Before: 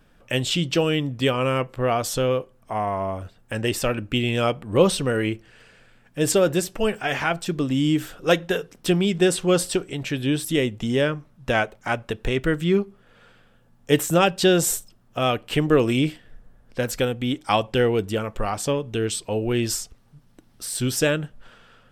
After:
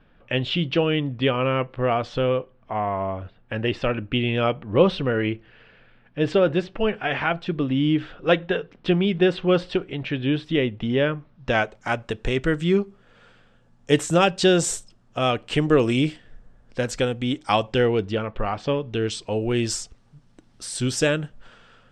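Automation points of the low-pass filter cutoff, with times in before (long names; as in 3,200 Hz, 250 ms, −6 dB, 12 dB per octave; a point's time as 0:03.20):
low-pass filter 24 dB per octave
0:11.17 3,600 Hz
0:11.76 8,100 Hz
0:17.61 8,100 Hz
0:18.48 3,400 Hz
0:19.42 8,400 Hz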